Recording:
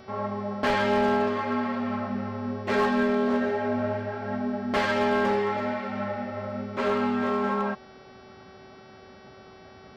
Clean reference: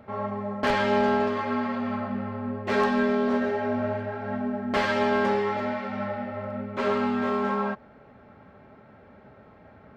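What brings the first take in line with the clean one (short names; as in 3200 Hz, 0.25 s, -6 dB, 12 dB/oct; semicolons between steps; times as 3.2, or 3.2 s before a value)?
clip repair -17 dBFS; de-hum 379.6 Hz, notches 15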